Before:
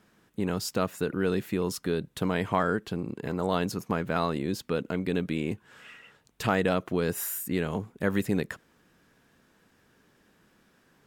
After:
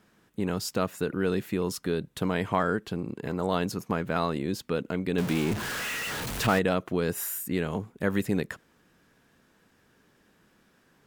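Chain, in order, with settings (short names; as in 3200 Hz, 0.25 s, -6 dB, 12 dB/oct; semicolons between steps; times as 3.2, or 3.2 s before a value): 5.18–6.59 zero-crossing step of -27.5 dBFS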